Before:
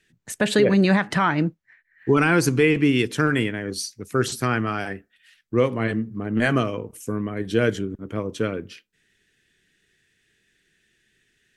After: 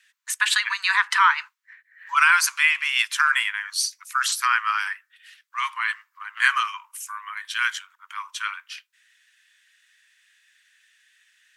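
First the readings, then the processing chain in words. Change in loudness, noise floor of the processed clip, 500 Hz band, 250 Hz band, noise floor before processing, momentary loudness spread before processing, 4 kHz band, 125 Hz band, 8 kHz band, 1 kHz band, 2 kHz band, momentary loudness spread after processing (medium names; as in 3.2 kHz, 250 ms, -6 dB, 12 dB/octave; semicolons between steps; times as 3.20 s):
+1.0 dB, -72 dBFS, under -40 dB, under -40 dB, -68 dBFS, 13 LU, +6.0 dB, under -40 dB, +6.0 dB, +4.5 dB, +6.0 dB, 18 LU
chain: steep high-pass 950 Hz 96 dB/octave; trim +6 dB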